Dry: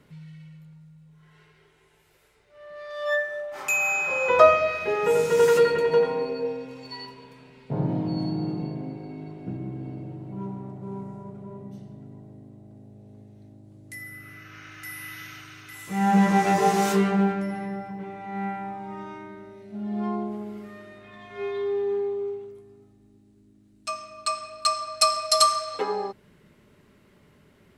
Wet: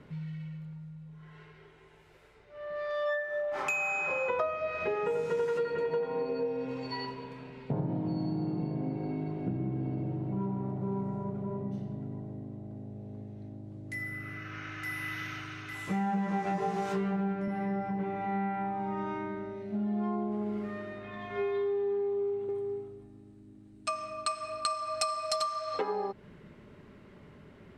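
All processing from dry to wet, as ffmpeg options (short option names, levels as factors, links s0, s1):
-filter_complex "[0:a]asettb=1/sr,asplit=3[s0][s1][s2];[s0]atrim=end=16.454[s3];[s1]atrim=start=16.45:end=17.48,asetpts=PTS-STARTPTS,afade=t=in:d=0.004:c=qsin,afade=t=out:st=1.026:d=0.004:c=qsin,lowshelf=f=150:g=9.5,bandreject=f=50:t=h:w=6,bandreject=f=100:t=h:w=6,bandreject=f=150:t=h:w=6,bandreject=f=200:t=h:w=6,bandreject=f=250:t=h:w=6,bandreject=f=300:t=h:w=6,bandreject=f=350:t=h:w=6,bandreject=f=400:t=h:w=6,bandreject=f=450:t=h:w=6[s4];[s2]atrim=start=17.476[s5];[s3][s4]acrossfade=d=0.004:c1=hsin:c2=qsin[s6];[s6][s5]acrossfade=d=0.004:c1=qsin:c2=hsin,asettb=1/sr,asplit=3[s7][s8][s9];[s7]atrim=end=22.054[s10];[s8]atrim=start=22.05:end=25.36,asetpts=PTS-STARTPTS,afade=t=in:d=0.004:c=qsin,afade=t=out:st=3.306:d=0.004:c=qsin,equalizer=f=8700:w=4.3:g=10,aecho=1:1:436:0.299,atrim=end_sample=145971[s11];[s9]atrim=start=25.356[s12];[s10][s11]acrossfade=d=0.004:c1=hsin:c2=qsin[s13];[s13][s12]acrossfade=d=0.004:c1=qsin:c2=hsin,aemphasis=mode=reproduction:type=75fm,acompressor=threshold=0.0224:ratio=8,volume=1.58"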